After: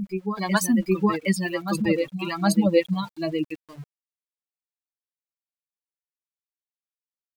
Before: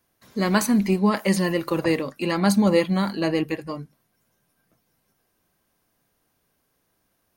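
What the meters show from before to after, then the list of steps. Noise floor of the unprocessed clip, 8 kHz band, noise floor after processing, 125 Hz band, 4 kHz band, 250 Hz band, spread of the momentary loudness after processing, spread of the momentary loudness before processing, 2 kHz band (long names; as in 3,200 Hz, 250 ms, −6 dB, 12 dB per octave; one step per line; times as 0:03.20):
−72 dBFS, 0.0 dB, below −85 dBFS, −2.5 dB, −2.5 dB, −2.0 dB, 8 LU, 11 LU, −1.5 dB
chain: spectral dynamics exaggerated over time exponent 3
in parallel at −1 dB: downward compressor 10 to 1, threshold −36 dBFS, peak gain reduction 20 dB
on the sum: centre clipping without the shift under −48 dBFS
backwards echo 766 ms −7 dB
level +2 dB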